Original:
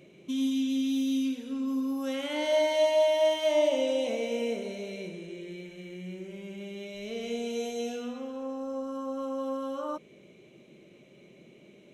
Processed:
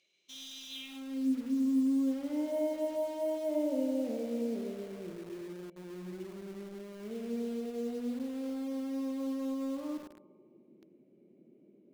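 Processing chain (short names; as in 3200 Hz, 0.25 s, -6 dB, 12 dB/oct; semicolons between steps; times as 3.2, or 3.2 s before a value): band-pass sweep 4800 Hz -> 280 Hz, 0.68–1.3; narrowing echo 0.104 s, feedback 69%, band-pass 770 Hz, level -8 dB; in parallel at -3.5 dB: bit-crush 8-bit; on the sum: gain -1.5 dB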